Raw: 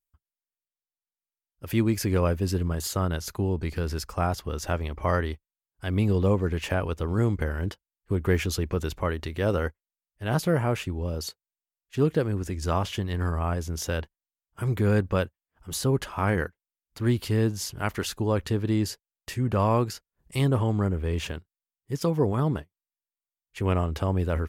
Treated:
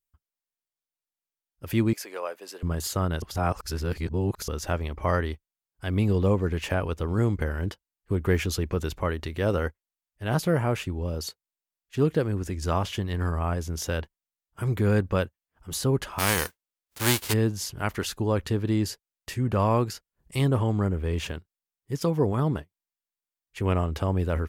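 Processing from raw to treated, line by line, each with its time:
1.93–2.63 s: ladder high-pass 440 Hz, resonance 20%
3.22–4.48 s: reverse
16.18–17.32 s: formants flattened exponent 0.3

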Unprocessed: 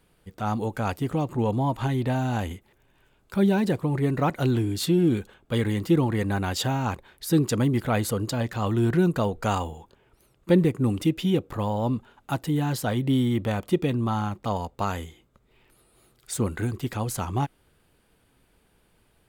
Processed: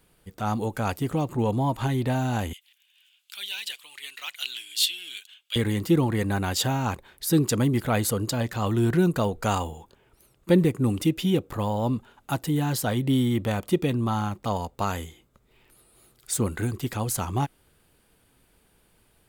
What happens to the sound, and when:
2.53–5.56 s: resonant high-pass 3 kHz, resonance Q 3.6
whole clip: treble shelf 5.3 kHz +6.5 dB

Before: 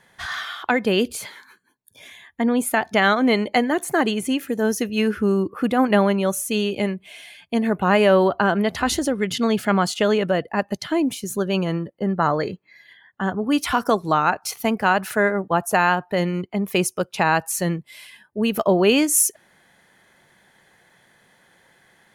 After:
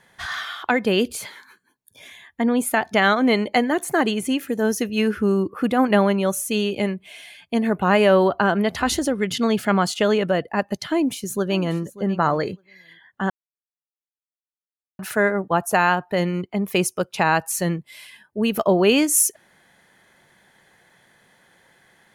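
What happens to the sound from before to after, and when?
10.89–11.80 s: echo throw 590 ms, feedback 10%, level -17 dB
13.30–14.99 s: mute

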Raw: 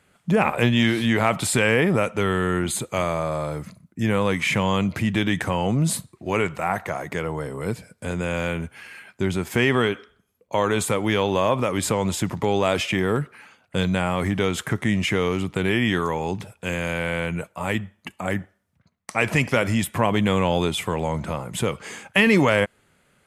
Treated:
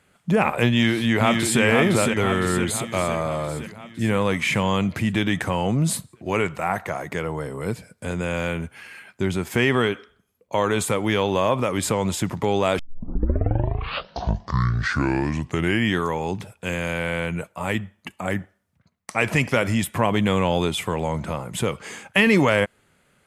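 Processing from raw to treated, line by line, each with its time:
0.69–1.62 s: echo throw 510 ms, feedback 60%, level -4 dB
12.79 s: tape start 3.16 s

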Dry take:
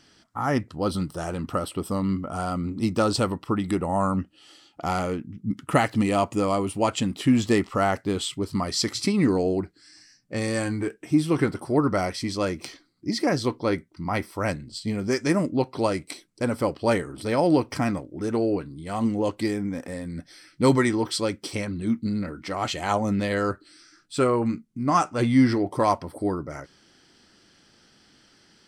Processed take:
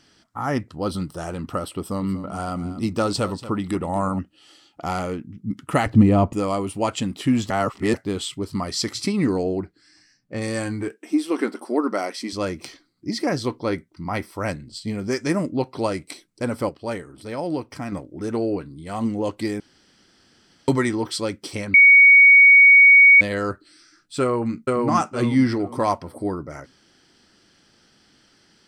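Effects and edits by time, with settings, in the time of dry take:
1.75–4.19 s: delay 236 ms -14 dB
5.86–6.33 s: tilt EQ -4 dB/octave
7.50–7.94 s: reverse
9.43–10.41 s: treble shelf 5.8 kHz -> 4 kHz -9 dB
10.92–12.33 s: brick-wall FIR high-pass 200 Hz
16.69–17.92 s: gain -6.5 dB
19.60–20.68 s: room tone
21.74–23.21 s: bleep 2.24 kHz -7 dBFS
24.21–24.86 s: echo throw 460 ms, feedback 30%, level -0.5 dB

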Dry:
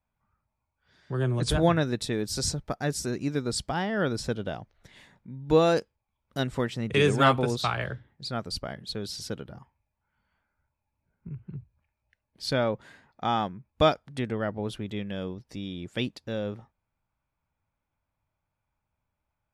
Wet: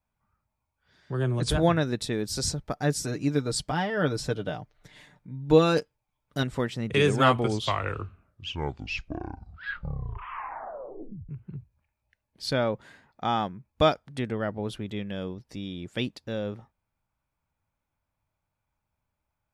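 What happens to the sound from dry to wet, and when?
2.75–6.43 s: comb 6.7 ms, depth 57%
7.12 s: tape stop 4.17 s

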